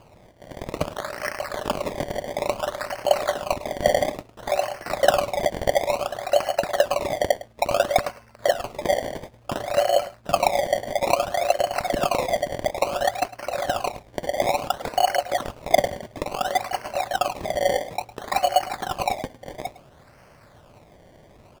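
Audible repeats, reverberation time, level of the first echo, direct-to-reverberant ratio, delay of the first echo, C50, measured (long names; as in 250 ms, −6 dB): 1, no reverb audible, −17.5 dB, no reverb audible, 106 ms, no reverb audible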